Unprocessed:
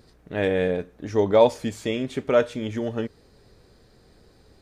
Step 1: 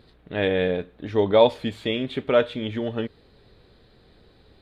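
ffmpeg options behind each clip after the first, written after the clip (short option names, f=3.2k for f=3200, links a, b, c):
-af "highshelf=f=4.7k:t=q:w=3:g=-8.5"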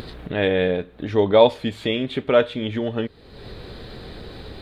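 -af "acompressor=mode=upward:threshold=-25dB:ratio=2.5,volume=2.5dB"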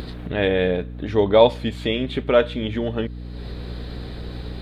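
-af "aeval=exprs='val(0)+0.0251*(sin(2*PI*60*n/s)+sin(2*PI*2*60*n/s)/2+sin(2*PI*3*60*n/s)/3+sin(2*PI*4*60*n/s)/4+sin(2*PI*5*60*n/s)/5)':c=same"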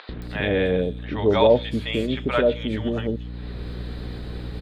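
-filter_complex "[0:a]acrossover=split=700|4300[a][b][c];[a]adelay=90[d];[c]adelay=220[e];[d][b][e]amix=inputs=3:normalize=0"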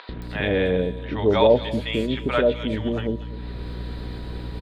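-af "aecho=1:1:247:0.141,aeval=exprs='val(0)+0.00282*sin(2*PI*970*n/s)':c=same"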